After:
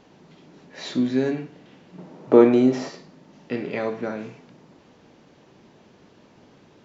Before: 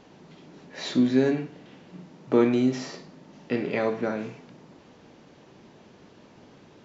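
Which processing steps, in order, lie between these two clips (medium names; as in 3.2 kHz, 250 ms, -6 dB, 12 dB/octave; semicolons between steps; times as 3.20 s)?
1.98–2.89 s: peaking EQ 570 Hz +10 dB 2.6 oct; trim -1 dB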